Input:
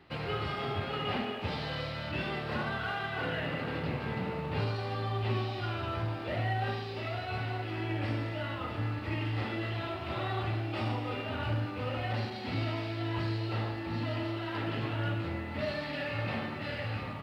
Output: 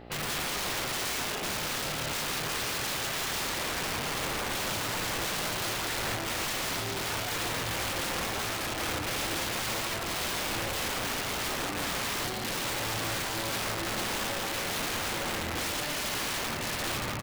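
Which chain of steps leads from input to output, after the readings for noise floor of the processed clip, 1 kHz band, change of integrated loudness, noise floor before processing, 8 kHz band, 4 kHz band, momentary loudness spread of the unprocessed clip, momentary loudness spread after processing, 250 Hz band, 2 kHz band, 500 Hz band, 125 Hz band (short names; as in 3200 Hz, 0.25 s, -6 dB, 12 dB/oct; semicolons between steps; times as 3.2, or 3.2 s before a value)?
-34 dBFS, +3.0 dB, +4.0 dB, -39 dBFS, n/a, +9.5 dB, 3 LU, 1 LU, -2.0 dB, +5.5 dB, 0.0 dB, -7.5 dB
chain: buzz 60 Hz, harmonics 14, -53 dBFS -2 dB/oct; wrapped overs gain 32.5 dB; outdoor echo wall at 29 m, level -7 dB; gain +4.5 dB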